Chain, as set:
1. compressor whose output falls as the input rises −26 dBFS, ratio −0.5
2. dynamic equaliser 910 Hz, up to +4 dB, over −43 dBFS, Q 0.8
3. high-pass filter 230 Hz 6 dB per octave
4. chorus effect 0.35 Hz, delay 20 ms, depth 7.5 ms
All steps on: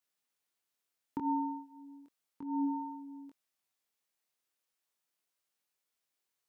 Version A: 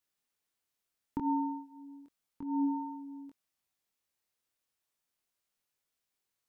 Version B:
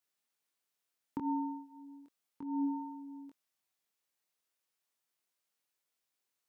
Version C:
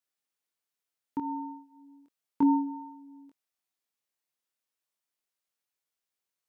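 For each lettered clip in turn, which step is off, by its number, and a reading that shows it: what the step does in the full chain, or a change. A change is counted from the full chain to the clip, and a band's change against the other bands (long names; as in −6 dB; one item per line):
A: 3, change in integrated loudness +1.5 LU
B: 2, change in integrated loudness −1.5 LU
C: 1, change in crest factor +3.5 dB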